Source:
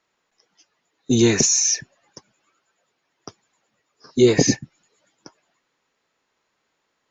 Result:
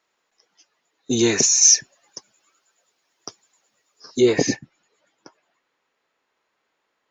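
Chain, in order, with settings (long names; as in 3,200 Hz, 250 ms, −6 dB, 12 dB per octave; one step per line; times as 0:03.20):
bass and treble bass −8 dB, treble +1 dB, from 0:01.61 treble +9 dB, from 0:04.19 treble −6 dB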